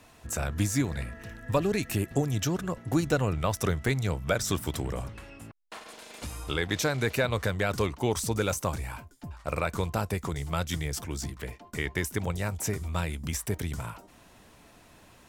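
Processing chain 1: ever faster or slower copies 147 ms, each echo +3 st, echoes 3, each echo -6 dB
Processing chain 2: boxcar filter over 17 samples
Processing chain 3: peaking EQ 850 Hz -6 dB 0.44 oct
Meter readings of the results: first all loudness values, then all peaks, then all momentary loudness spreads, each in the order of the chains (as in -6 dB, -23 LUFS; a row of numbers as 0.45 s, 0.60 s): -29.5 LUFS, -32.0 LUFS, -30.5 LUFS; -10.5 dBFS, -14.5 dBFS, -13.5 dBFS; 9 LU, 14 LU, 14 LU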